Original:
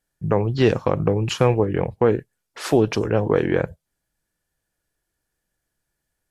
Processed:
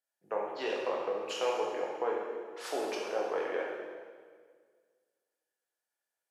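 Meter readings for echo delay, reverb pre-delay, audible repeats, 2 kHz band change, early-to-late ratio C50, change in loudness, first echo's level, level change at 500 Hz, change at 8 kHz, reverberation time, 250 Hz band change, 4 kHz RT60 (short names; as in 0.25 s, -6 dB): none, 12 ms, none, -9.5 dB, 0.5 dB, -14.0 dB, none, -12.5 dB, -10.0 dB, 1.7 s, -21.5 dB, 1.6 s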